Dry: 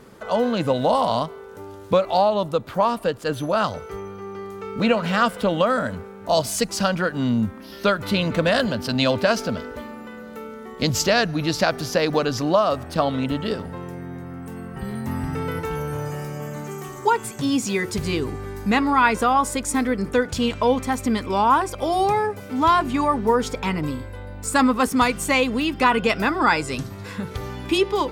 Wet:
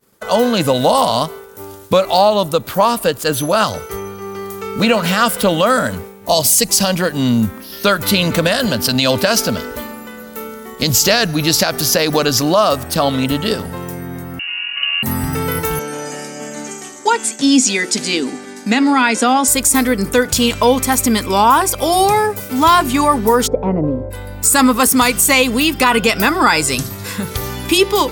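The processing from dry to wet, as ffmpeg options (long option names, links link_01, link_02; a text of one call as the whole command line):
ffmpeg -i in.wav -filter_complex "[0:a]asettb=1/sr,asplit=3[link_01][link_02][link_03];[link_01]atrim=end=5.994[link_04];[link_02]atrim=start=5.99:end=7.25,asetpts=PTS-STARTPTS,afade=type=in:duration=0.004:curve=qsin,afade=type=out:start_time=1.256:duration=0.004:curve=qsin,equalizer=frequency=1400:width=4.4:gain=-8.5[link_05];[link_03]atrim=start=7.246[link_06];[link_04][link_05]acrossfade=duration=0.004:curve1=hsin:curve2=qsin[link_07];[link_07][link_06]acrossfade=duration=0.004:curve1=qsin:curve2=hsin,asettb=1/sr,asplit=3[link_08][link_09][link_10];[link_08]atrim=end=14.394[link_11];[link_09]atrim=start=14.39:end=15.03,asetpts=PTS-STARTPTS,afade=type=in:duration=0.004:curve=qsin,afade=type=out:start_time=0.636:duration=0.004:curve=qsin,lowpass=frequency=2600:width_type=q:width=0.5098,lowpass=frequency=2600:width_type=q:width=0.6013,lowpass=frequency=2600:width_type=q:width=0.9,lowpass=frequency=2600:width_type=q:width=2.563,afreqshift=-3000[link_12];[link_10]atrim=start=15.026[link_13];[link_11][link_12]acrossfade=duration=0.004:curve1=hsin:curve2=qsin[link_14];[link_14][link_13]acrossfade=duration=0.004:curve1=qsin:curve2=hsin,asettb=1/sr,asplit=3[link_15][link_16][link_17];[link_15]atrim=end=15.794[link_18];[link_16]atrim=start=15.79:end=19.48,asetpts=PTS-STARTPTS,afade=type=in:duration=0.004:curve=qsin,afade=type=out:start_time=3.686:duration=0.004:curve=qsin,highpass=frequency=230:width=0.5412,highpass=frequency=230:width=1.3066,equalizer=frequency=250:width_type=q:width=4:gain=8,equalizer=frequency=390:width_type=q:width=4:gain=-6,equalizer=frequency=1100:width_type=q:width=4:gain=-9,lowpass=frequency=8000:width=0.5412,lowpass=frequency=8000:width=1.3066[link_19];[link_17]atrim=start=19.476[link_20];[link_18][link_19]acrossfade=duration=0.004:curve1=hsin:curve2=qsin[link_21];[link_21][link_20]acrossfade=duration=0.004:curve1=qsin:curve2=hsin,asplit=3[link_22][link_23][link_24];[link_22]afade=type=out:start_time=23.46:duration=0.02[link_25];[link_23]lowpass=frequency=590:width_type=q:width=2.7,afade=type=in:start_time=23.46:duration=0.02,afade=type=out:start_time=24.1:duration=0.02[link_26];[link_24]afade=type=in:start_time=24.1:duration=0.02[link_27];[link_25][link_26][link_27]amix=inputs=3:normalize=0,agate=range=-33dB:threshold=-34dB:ratio=3:detection=peak,aemphasis=mode=production:type=75fm,alimiter=level_in=8.5dB:limit=-1dB:release=50:level=0:latency=1,volume=-1dB" out.wav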